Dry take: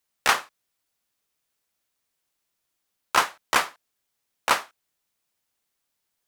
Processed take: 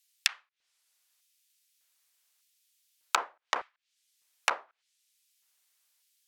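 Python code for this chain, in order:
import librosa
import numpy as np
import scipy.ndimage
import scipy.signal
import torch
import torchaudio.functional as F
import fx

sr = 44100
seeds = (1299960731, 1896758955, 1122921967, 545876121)

y = fx.env_lowpass_down(x, sr, base_hz=510.0, full_db=-23.0)
y = fx.tilt_shelf(y, sr, db=-9.5, hz=970.0)
y = fx.filter_lfo_highpass(y, sr, shape='square', hz=0.83, low_hz=450.0, high_hz=2600.0, q=0.9)
y = y * librosa.db_to_amplitude(-1.5)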